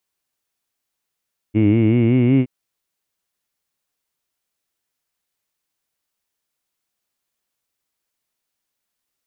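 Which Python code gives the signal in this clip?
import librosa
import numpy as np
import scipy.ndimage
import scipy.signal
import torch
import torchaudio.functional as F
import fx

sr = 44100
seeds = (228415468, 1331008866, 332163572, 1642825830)

y = fx.formant_vowel(sr, seeds[0], length_s=0.92, hz=103.0, glide_st=4.5, vibrato_hz=5.3, vibrato_st=0.9, f1_hz=300.0, f2_hz=2200.0, f3_hz=2800.0)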